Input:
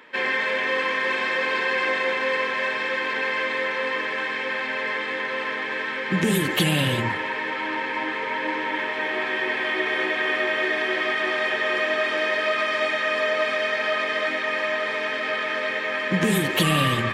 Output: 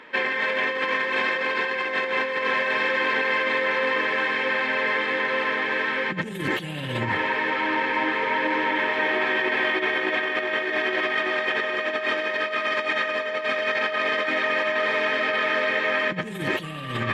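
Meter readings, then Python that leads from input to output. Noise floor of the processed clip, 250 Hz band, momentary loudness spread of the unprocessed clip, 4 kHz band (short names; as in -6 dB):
-32 dBFS, -3.5 dB, 5 LU, -2.0 dB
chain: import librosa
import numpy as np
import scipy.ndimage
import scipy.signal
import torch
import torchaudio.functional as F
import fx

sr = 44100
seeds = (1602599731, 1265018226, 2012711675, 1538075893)

y = fx.high_shelf(x, sr, hz=7300.0, db=-12.0)
y = fx.over_compress(y, sr, threshold_db=-26.0, ratio=-0.5)
y = y * 10.0 ** (2.0 / 20.0)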